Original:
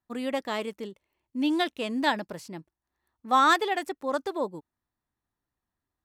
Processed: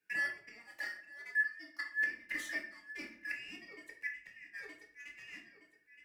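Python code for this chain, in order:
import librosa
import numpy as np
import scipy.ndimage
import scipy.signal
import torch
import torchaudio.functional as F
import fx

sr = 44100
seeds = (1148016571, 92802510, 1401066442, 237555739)

y = fx.band_shuffle(x, sr, order='2143')
y = fx.echo_feedback(y, sr, ms=919, feedback_pct=26, wet_db=-23)
y = fx.leveller(y, sr, passes=1)
y = fx.highpass(y, sr, hz=140.0, slope=6)
y = fx.gate_flip(y, sr, shuts_db=-19.0, range_db=-27)
y = fx.comb(y, sr, ms=3.4, depth=0.94, at=(0.59, 3.36))
y = fx.room_shoebox(y, sr, seeds[0], volume_m3=46.0, walls='mixed', distance_m=0.67)
y = fx.band_squash(y, sr, depth_pct=40)
y = y * librosa.db_to_amplitude(-9.0)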